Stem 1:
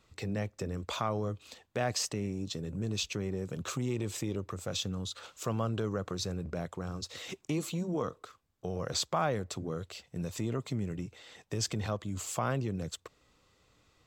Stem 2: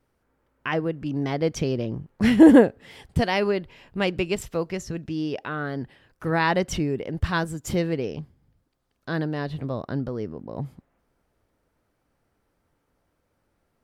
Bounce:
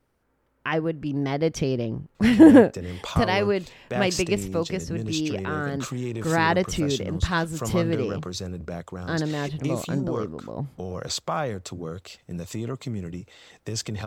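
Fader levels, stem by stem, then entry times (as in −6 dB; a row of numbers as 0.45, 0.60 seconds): +3.0, +0.5 decibels; 2.15, 0.00 seconds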